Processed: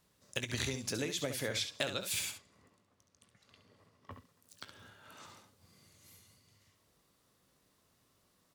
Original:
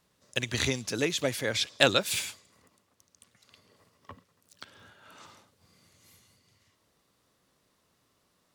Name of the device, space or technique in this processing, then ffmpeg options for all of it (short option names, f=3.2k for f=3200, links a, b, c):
ASMR close-microphone chain: -filter_complex "[0:a]lowshelf=f=220:g=4,acompressor=threshold=-29dB:ratio=10,highshelf=f=8.1k:g=5.5,asettb=1/sr,asplit=3[a][b][c];[a]atrim=end=2.314[d];[b]atrim=start=2.31:end=4.11,asetpts=PTS-STARTPTS,afade=t=in:d=0.004:c=qsin,afade=t=out:st=1.796:d=0.004:c=qsin,aemphasis=mode=reproduction:type=50kf[e];[c]atrim=start=4.106[f];[d][e]acrossfade=d=0.004:c1=hsin:c2=qsin[g];[g][f]acrossfade=d=0.004:c1=qsin:c2=hsin,aecho=1:1:20|68:0.224|0.355,volume=-3.5dB"